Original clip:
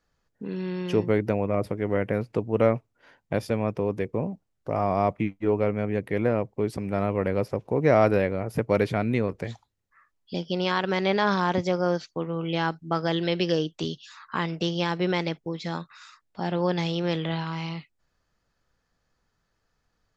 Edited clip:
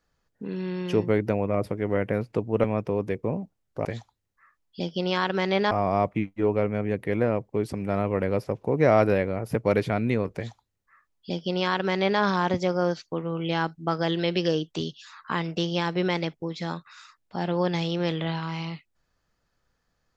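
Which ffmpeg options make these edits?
-filter_complex "[0:a]asplit=4[s0][s1][s2][s3];[s0]atrim=end=2.642[s4];[s1]atrim=start=3.538:end=4.752[s5];[s2]atrim=start=9.388:end=11.252[s6];[s3]atrim=start=4.748[s7];[s4][s5]acrossfade=d=0.004:c1=hsin:c2=hsin[s8];[s8][s6]acrossfade=d=0.004:c1=hsin:c2=hsin[s9];[s9][s7]acrossfade=d=0.004:c1=hsin:c2=hsin"

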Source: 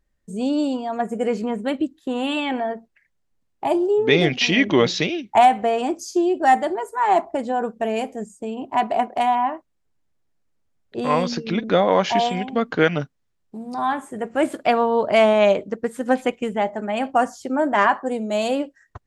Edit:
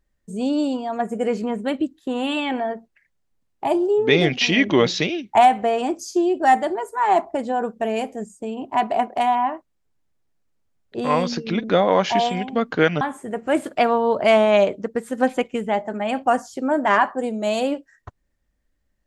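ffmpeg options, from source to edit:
-filter_complex "[0:a]asplit=2[s0][s1];[s0]atrim=end=13.012[s2];[s1]atrim=start=13.888[s3];[s2][s3]acrossfade=d=0.004:c1=hsin:c2=hsin"

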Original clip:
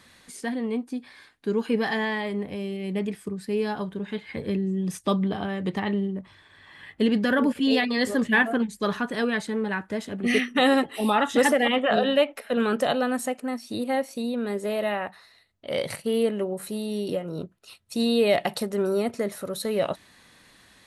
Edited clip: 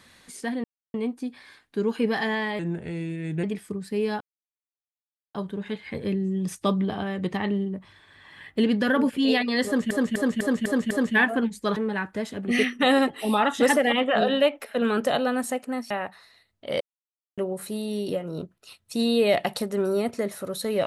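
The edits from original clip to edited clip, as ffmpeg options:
-filter_complex "[0:a]asplit=14[s0][s1][s2][s3][s4][s5][s6][s7][s8][s9][s10][s11][s12][s13];[s0]atrim=end=0.64,asetpts=PTS-STARTPTS,afade=t=out:st=0.636:d=0.004:c=hsin,apad=pad_dur=0.3[s14];[s1]atrim=start=0.64:end=2.294,asetpts=PTS-STARTPTS,afade=t=in:d=0.004:c=hsin[s15];[s2]atrim=start=2.29:end=3,asetpts=PTS-STARTPTS,asetrate=37044,aresample=44100[s16];[s3]atrim=start=2.996:end=3.77,asetpts=PTS-STARTPTS,afade=t=out:st=0.77:d=0.004:c=hsin,apad=pad_dur=1.14[s17];[s4]atrim=start=3.77:end=8.332,asetpts=PTS-STARTPTS,afade=t=in:d=0.004:c=hsin[s18];[s5]atrim=start=8.078:end=8.332[s19];[s6]atrim=start=8.078:end=8.332[s20];[s7]atrim=start=8.078:end=8.332[s21];[s8]atrim=start=8.078:end=8.332[s22];[s9]atrim=start=8.078:end=8.942[s23];[s10]atrim=start=9.518:end=13.662[s24];[s11]atrim=start=14.908:end=15.81,asetpts=PTS-STARTPTS,afade=t=out:st=0.898:d=0.004:c=hsin[s25];[s12]atrim=start=15.81:end=16.38,asetpts=PTS-STARTPTS,volume=0[s26];[s13]atrim=start=16.38,asetpts=PTS-STARTPTS,afade=t=in:d=0.004:c=hsin[s27];[s14][s15]concat=n=2:v=0:a=1[s28];[s28][s16]acrossfade=d=0.004:c1=hsin:c2=hsin[s29];[s17][s18]concat=n=2:v=0:a=1[s30];[s29][s30]acrossfade=d=0.004:c1=hsin:c2=hsin[s31];[s31][s19]acrossfade=d=0.004:c1=hsin:c2=hsin[s32];[s32][s20]acrossfade=d=0.004:c1=hsin:c2=hsin[s33];[s33][s21]acrossfade=d=0.004:c1=hsin:c2=hsin[s34];[s34][s22]acrossfade=d=0.004:c1=hsin:c2=hsin[s35];[s35][s23]acrossfade=d=0.004:c1=hsin:c2=hsin[s36];[s36][s24]acrossfade=d=0.004:c1=hsin:c2=hsin[s37];[s25][s26][s27]concat=n=3:v=0:a=1[s38];[s37][s38]acrossfade=d=0.004:c1=hsin:c2=hsin"

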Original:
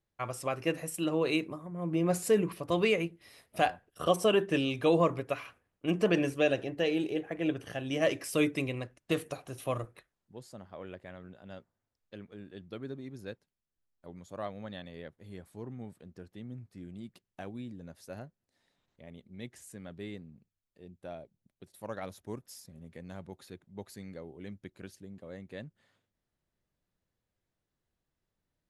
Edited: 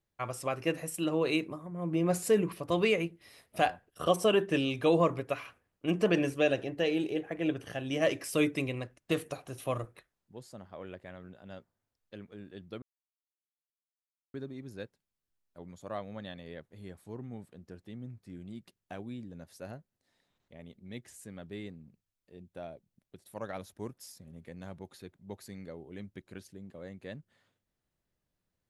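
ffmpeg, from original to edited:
-filter_complex "[0:a]asplit=2[s0][s1];[s0]atrim=end=12.82,asetpts=PTS-STARTPTS,afade=t=out:st=12.816:d=0.004:c=hsin,apad=pad_dur=1.52[s2];[s1]atrim=start=12.82,asetpts=PTS-STARTPTS,afade=t=in:d=0.004:c=hsin[s3];[s2][s3]concat=n=2:v=0:a=1"

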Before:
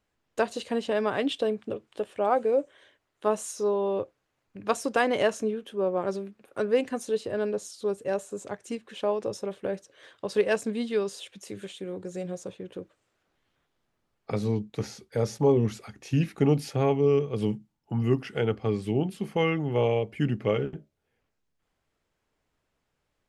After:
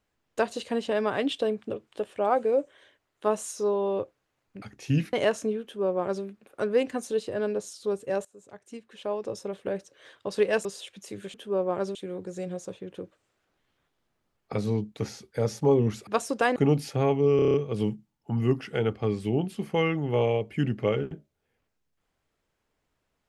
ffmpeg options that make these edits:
-filter_complex "[0:a]asplit=15[s0][s1][s2][s3][s4][s5][s6][s7][s8][s9][s10][s11][s12][s13][s14];[s0]atrim=end=4.622[s15];[s1]atrim=start=15.848:end=16.362[s16];[s2]atrim=start=5.108:end=8.23,asetpts=PTS-STARTPTS,afade=t=out:st=3.118:d=0.004:c=hsin:silence=0.0944061[s17];[s3]atrim=start=8.23:end=10.632,asetpts=PTS-STARTPTS,afade=t=in:d=1.43:silence=0.0944061[s18];[s4]atrim=start=11.038:end=11.732[s19];[s5]atrim=start=5.608:end=6.222[s20];[s6]atrim=start=11.728:end=15.852[s21];[s7]atrim=start=4.618:end=5.112[s22];[s8]atrim=start=16.358:end=17.192[s23];[s9]atrim=start=17.158:end=17.192[s24];[s10]atrim=start=17.158:end=17.192[s25];[s11]atrim=start=17.158:end=17.192[s26];[s12]atrim=start=17.158:end=17.192[s27];[s13]atrim=start=17.158:end=17.192[s28];[s14]atrim=start=17.158[s29];[s15][s16]acrossfade=d=0.004:c1=hsin:c2=hsin[s30];[s17][s18]concat=n=2:v=0:a=1[s31];[s30][s31]acrossfade=d=0.004:c1=hsin:c2=hsin[s32];[s32][s19]acrossfade=d=0.004:c1=hsin:c2=hsin[s33];[s33][s20]acrossfade=d=0.004:c1=hsin:c2=hsin[s34];[s34][s21]acrossfade=d=0.004:c1=hsin:c2=hsin[s35];[s35][s22]acrossfade=d=0.004:c1=hsin:c2=hsin[s36];[s36][s23]acrossfade=d=0.004:c1=hsin:c2=hsin[s37];[s37][s24]acrossfade=d=0.004:c1=hsin:c2=hsin[s38];[s38][s25]acrossfade=d=0.004:c1=hsin:c2=hsin[s39];[s39][s26]acrossfade=d=0.004:c1=hsin:c2=hsin[s40];[s40][s27]acrossfade=d=0.004:c1=hsin:c2=hsin[s41];[s41][s28]acrossfade=d=0.004:c1=hsin:c2=hsin[s42];[s42][s29]acrossfade=d=0.004:c1=hsin:c2=hsin"

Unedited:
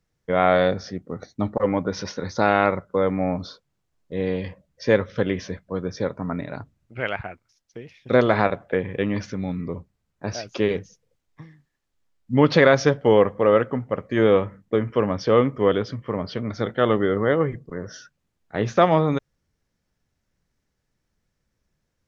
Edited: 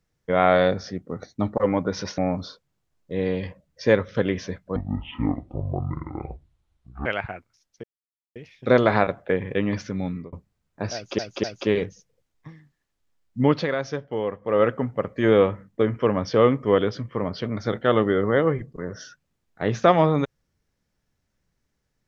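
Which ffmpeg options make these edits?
-filter_complex "[0:a]asplit=10[s0][s1][s2][s3][s4][s5][s6][s7][s8][s9];[s0]atrim=end=2.182[s10];[s1]atrim=start=3.188:end=5.774[s11];[s2]atrim=start=5.77:end=7.01,asetpts=PTS-STARTPTS,asetrate=23814,aresample=44100[s12];[s3]atrim=start=7.006:end=7.79,asetpts=PTS-STARTPTS,afade=t=out:st=0.78:d=0.004:c=hsin,apad=pad_dur=0.52[s13];[s4]atrim=start=7.79:end=9.76,asetpts=PTS-STARTPTS,afade=t=in:d=0.004:c=hsin,afade=t=out:st=1.66:d=0.31:c=qsin[s14];[s5]atrim=start=9.76:end=10.622,asetpts=PTS-STARTPTS,afade=t=in:d=0.004:c=hsin[s15];[s6]atrim=start=10.368:end=10.622[s16];[s7]atrim=start=10.368:end=12.6,asetpts=PTS-STARTPTS,afade=t=out:st=1.952:d=0.28:silence=0.281838[s17];[s8]atrim=start=12.6:end=13.34,asetpts=PTS-STARTPTS,volume=0.282[s18];[s9]atrim=start=13.34,asetpts=PTS-STARTPTS,afade=t=in:d=0.28:silence=0.281838[s19];[s10][s11]acrossfade=d=0.004:c1=hsin:c2=hsin[s20];[s20][s12]acrossfade=d=0.004:c1=hsin:c2=hsin[s21];[s13][s14][s15]concat=n=3:v=0:a=1[s22];[s21][s22]acrossfade=d=0.004:c1=hsin:c2=hsin[s23];[s23][s16]acrossfade=d=0.004:c1=hsin:c2=hsin[s24];[s17][s18][s19]concat=n=3:v=0:a=1[s25];[s24][s25]acrossfade=d=0.004:c1=hsin:c2=hsin"

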